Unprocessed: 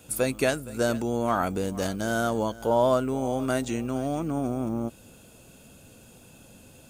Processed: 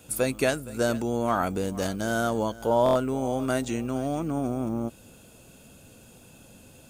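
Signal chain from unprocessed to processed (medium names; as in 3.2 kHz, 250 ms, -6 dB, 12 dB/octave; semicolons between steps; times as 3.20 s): buffer glitch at 2.84 s, samples 1024, times 4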